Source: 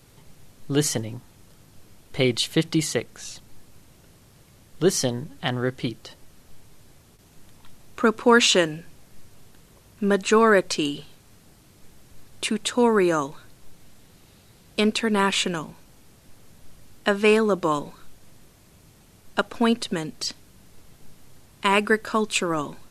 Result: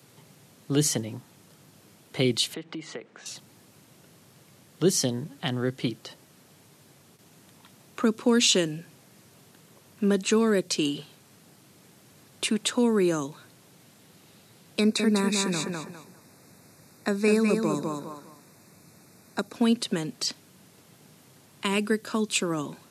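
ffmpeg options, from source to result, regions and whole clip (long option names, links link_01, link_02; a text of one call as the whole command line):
ffmpeg -i in.wav -filter_complex "[0:a]asettb=1/sr,asplit=3[link_01][link_02][link_03];[link_01]atrim=end=2.544[link_04];[link_02]atrim=start=2.54:end=3.26,asetpts=PTS-STARTPTS,afade=type=in:duration=0.004:curve=qsin,afade=type=out:start_time=0.716:duration=0.004:curve=qsin,acrossover=split=190 2900:gain=0.178 1 0.158[link_05][link_06][link_07];[link_05][link_06][link_07]amix=inputs=3:normalize=0,acompressor=threshold=-35dB:ratio=4:attack=3.2:release=140:knee=1:detection=peak,lowpass=frequency=8200:width=0.5412,lowpass=frequency=8200:width=1.3066[link_08];[link_03]atrim=start=3.256[link_09];[link_04][link_08]acrossfade=duration=0.004:curve1=hsin:curve2=qsin[link_10];[link_10][link_09]acrossfade=duration=0.004:curve1=qsin:curve2=hsin,asettb=1/sr,asplit=3[link_11][link_12][link_13];[link_11]atrim=end=14.794[link_14];[link_12]atrim=start=14.79:end=19.53,asetpts=PTS-STARTPTS,afade=type=in:duration=0.004:curve=qsin,afade=type=out:start_time=4.736:duration=0.004:curve=qsin,asuperstop=centerf=3100:order=8:qfactor=3.1,aecho=1:1:202|404|606:0.562|0.135|0.0324,atrim=end_sample=209034[link_15];[link_13]atrim=start=19.526[link_16];[link_14][link_15]acrossfade=duration=0.004:curve1=hsin:curve2=qsin[link_17];[link_17][link_16]acrossfade=duration=0.004:curve1=qsin:curve2=hsin,highpass=frequency=120:width=0.5412,highpass=frequency=120:width=1.3066,acrossover=split=400|3000[link_18][link_19][link_20];[link_19]acompressor=threshold=-33dB:ratio=6[link_21];[link_18][link_21][link_20]amix=inputs=3:normalize=0" out.wav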